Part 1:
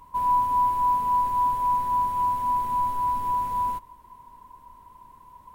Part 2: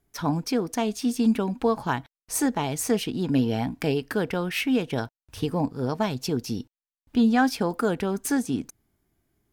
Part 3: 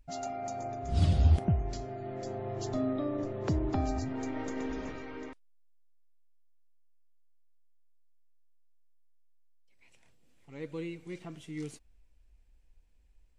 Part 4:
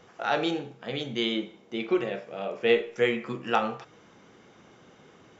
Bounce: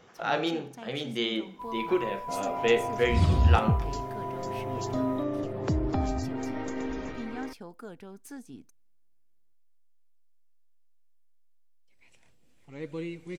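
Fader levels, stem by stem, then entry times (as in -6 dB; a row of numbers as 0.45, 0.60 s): -15.0, -19.0, +2.5, -1.5 dB; 1.45, 0.00, 2.20, 0.00 s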